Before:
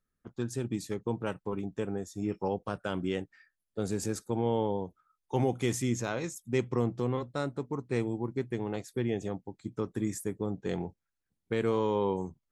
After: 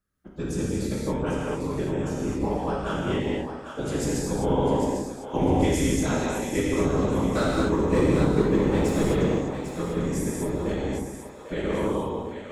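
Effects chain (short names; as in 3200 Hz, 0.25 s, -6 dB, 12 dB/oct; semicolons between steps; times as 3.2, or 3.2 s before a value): ending faded out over 1.24 s; 7.29–9.15 sample leveller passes 2; whisperiser; split-band echo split 510 Hz, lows 0.123 s, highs 0.798 s, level -8.5 dB; reverb, pre-delay 3 ms, DRR -5.5 dB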